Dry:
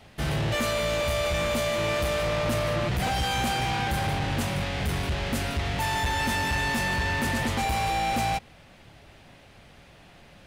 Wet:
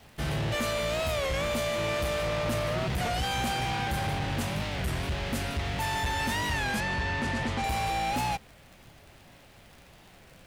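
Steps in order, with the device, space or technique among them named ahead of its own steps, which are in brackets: warped LP (warped record 33 1/3 rpm, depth 160 cents; crackle 61 per s -39 dBFS; pink noise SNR 31 dB); 6.80–7.64 s: distance through air 66 m; trim -3 dB

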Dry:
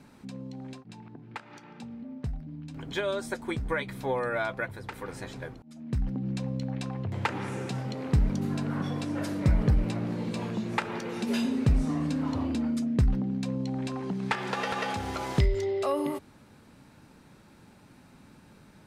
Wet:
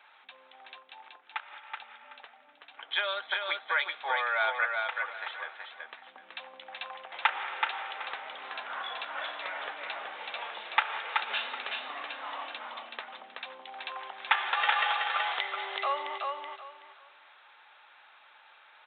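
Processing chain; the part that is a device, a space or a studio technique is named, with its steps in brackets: band-stop 1 kHz, Q 13; feedback delay 377 ms, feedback 24%, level -4 dB; musical greeting card (resampled via 8 kHz; high-pass 820 Hz 24 dB/octave; peaking EQ 3.5 kHz +4 dB 0.4 oct); trim +5 dB

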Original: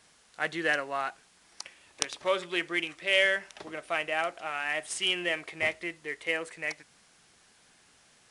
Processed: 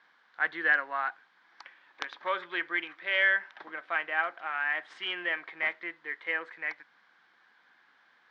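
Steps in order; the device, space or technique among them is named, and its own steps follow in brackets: phone earpiece (cabinet simulation 400–3300 Hz, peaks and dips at 420 Hz -8 dB, 620 Hz -8 dB, 1 kHz +3 dB, 1.6 kHz +7 dB, 2.7 kHz -10 dB)

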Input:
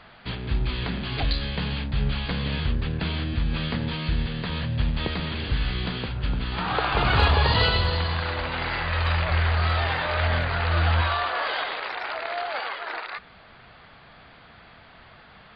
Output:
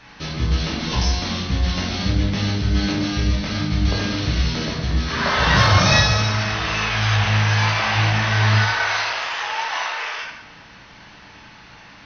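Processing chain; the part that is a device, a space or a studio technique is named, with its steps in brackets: nightcore (tape speed +29%); plate-style reverb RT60 0.84 s, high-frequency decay 0.9×, DRR -4.5 dB

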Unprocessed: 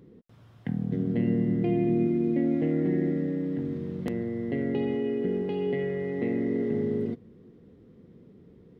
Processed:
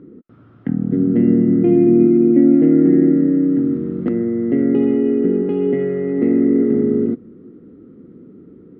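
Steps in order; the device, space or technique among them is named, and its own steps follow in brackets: inside a cardboard box (low-pass 2.5 kHz 12 dB/octave; small resonant body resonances 290/1300 Hz, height 15 dB, ringing for 20 ms); trim +1.5 dB

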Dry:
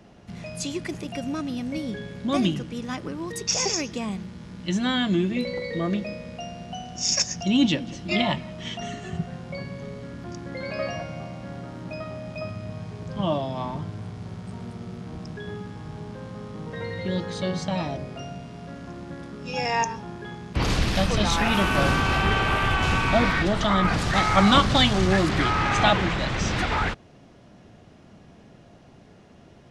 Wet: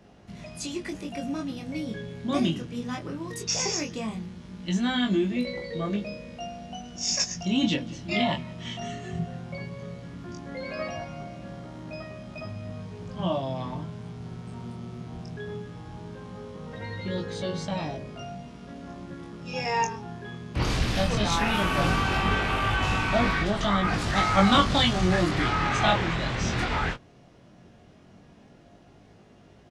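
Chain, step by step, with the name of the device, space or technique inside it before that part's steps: double-tracked vocal (doubling 17 ms -13 dB; chorus 0.17 Hz, delay 19.5 ms, depth 5.2 ms)

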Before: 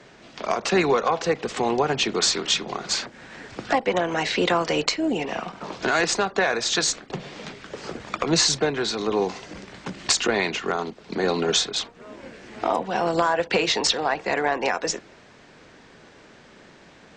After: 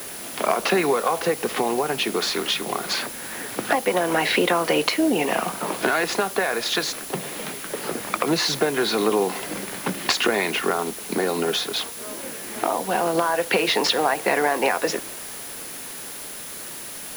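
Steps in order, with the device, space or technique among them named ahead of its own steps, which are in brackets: medium wave at night (band-pass 180–3700 Hz; compression, threshold -25 dBFS, peak gain reduction 9 dB; tremolo 0.21 Hz, depth 34%; whistle 10 kHz -47 dBFS; white noise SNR 13 dB); trim +8.5 dB

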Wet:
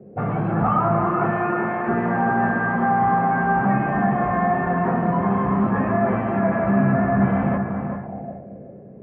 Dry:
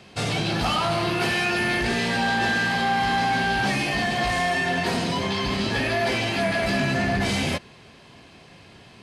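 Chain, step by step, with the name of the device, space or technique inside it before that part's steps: 1.08–1.87 s: high-pass 120 Hz -> 450 Hz 12 dB/octave; two-band feedback delay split 1.5 kHz, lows 226 ms, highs 406 ms, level -14 dB; feedback echo behind a low-pass 382 ms, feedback 38%, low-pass 1.7 kHz, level -5.5 dB; envelope filter bass rig (touch-sensitive low-pass 420–1100 Hz up, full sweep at -28.5 dBFS; cabinet simulation 71–2200 Hz, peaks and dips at 140 Hz +5 dB, 200 Hz +8 dB, 1 kHz -8 dB)

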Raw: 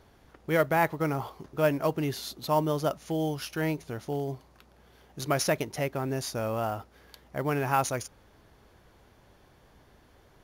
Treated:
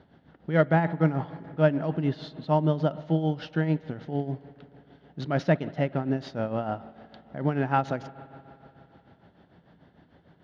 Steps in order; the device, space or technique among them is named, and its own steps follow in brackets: combo amplifier with spring reverb and tremolo (spring tank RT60 3.3 s, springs 59 ms, chirp 45 ms, DRR 15.5 dB; tremolo 6.7 Hz, depth 66%; cabinet simulation 89–3500 Hz, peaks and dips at 170 Hz +10 dB, 260 Hz +5 dB, 420 Hz -3 dB, 1.1 kHz -8 dB, 2.4 kHz -9 dB); trim +4 dB

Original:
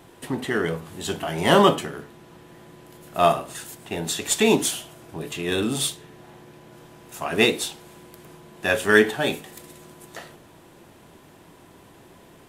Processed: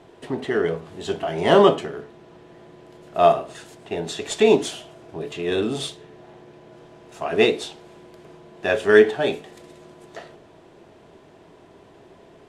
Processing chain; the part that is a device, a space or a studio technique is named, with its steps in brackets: inside a cardboard box (low-pass 5.7 kHz 12 dB/octave; small resonant body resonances 420/640 Hz, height 8 dB, ringing for 25 ms); trim -2.5 dB

